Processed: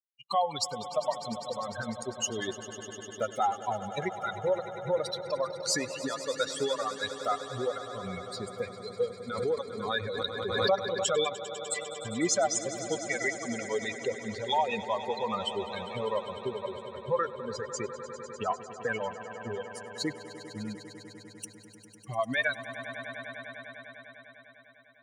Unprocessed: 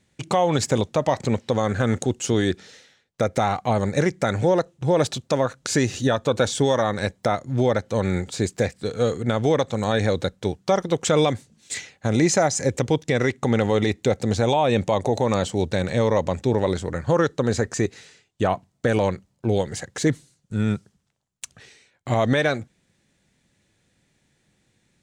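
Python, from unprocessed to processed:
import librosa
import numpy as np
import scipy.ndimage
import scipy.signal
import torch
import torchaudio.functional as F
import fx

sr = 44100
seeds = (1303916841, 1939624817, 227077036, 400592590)

y = fx.bin_expand(x, sr, power=3.0)
y = fx.recorder_agc(y, sr, target_db=-18.0, rise_db_per_s=13.0, max_gain_db=30)
y = fx.weighting(y, sr, curve='A')
y = fx.echo_swell(y, sr, ms=100, loudest=5, wet_db=-16)
y = fx.pre_swell(y, sr, db_per_s=45.0, at=(9.3, 11.33))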